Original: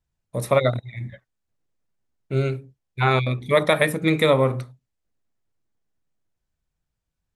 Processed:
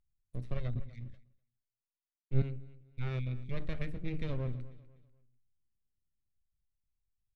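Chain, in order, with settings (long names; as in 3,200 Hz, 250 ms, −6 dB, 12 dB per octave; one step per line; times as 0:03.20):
half-wave rectification
guitar amp tone stack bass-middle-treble 10-0-1
in parallel at −2.5 dB: brickwall limiter −33.5 dBFS, peak gain reduction 8.5 dB
on the sum: treble cut that deepens with the level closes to 2,800 Hz, closed at −34.5 dBFS
on a send: repeating echo 247 ms, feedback 33%, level −18 dB
0:00.75–0:02.42: on the sum: multiband upward and downward expander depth 100%
level +1 dB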